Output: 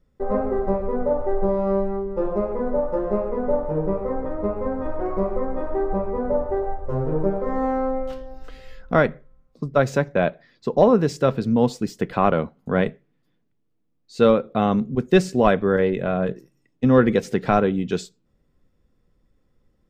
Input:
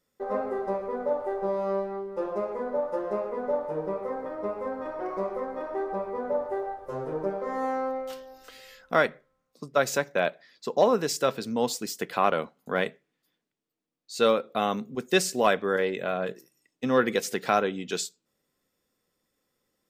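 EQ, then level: RIAA curve playback; low shelf 81 Hz +9.5 dB; +3.0 dB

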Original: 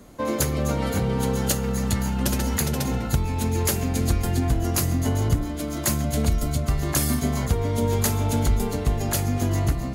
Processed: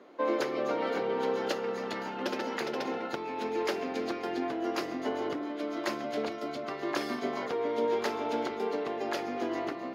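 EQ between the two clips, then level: Chebyshev high-pass 340 Hz, order 3; dynamic EQ 5200 Hz, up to +5 dB, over -49 dBFS, Q 5; air absorption 290 m; 0.0 dB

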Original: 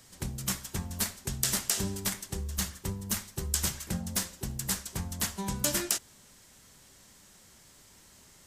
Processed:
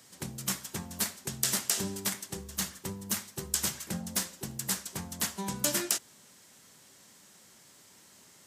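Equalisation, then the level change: HPF 150 Hz 12 dB/oct; 0.0 dB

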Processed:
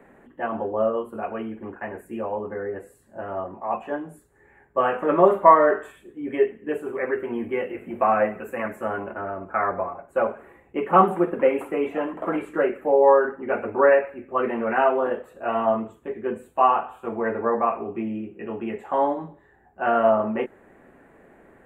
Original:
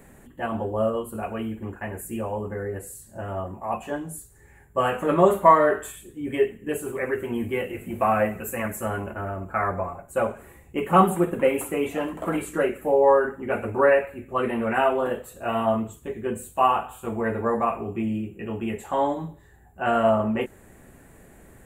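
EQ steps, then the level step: three-band isolator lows -15 dB, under 220 Hz, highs -22 dB, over 2500 Hz; +2.0 dB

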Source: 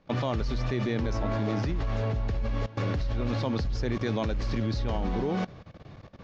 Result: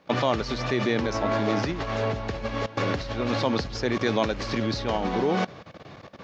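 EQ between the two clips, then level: HPF 370 Hz 6 dB/oct; +8.5 dB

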